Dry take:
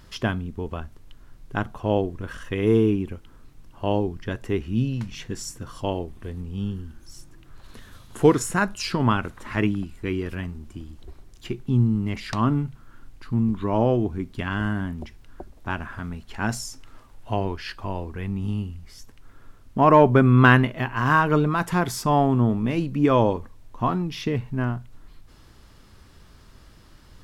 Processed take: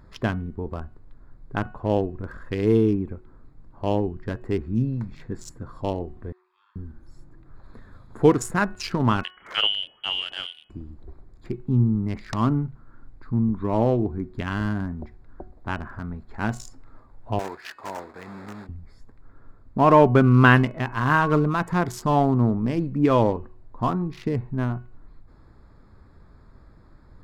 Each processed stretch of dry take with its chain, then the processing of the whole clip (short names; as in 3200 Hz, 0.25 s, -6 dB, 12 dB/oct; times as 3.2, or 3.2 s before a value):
6.32–6.76 steep high-pass 940 Hz 96 dB/oct + air absorption 130 m + Doppler distortion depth 0.16 ms
9.23–10.7 HPF 50 Hz 6 dB/oct + inverted band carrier 3200 Hz
17.39–18.69 block floating point 3-bit + weighting filter A
whole clip: Wiener smoothing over 15 samples; de-hum 367.2 Hz, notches 8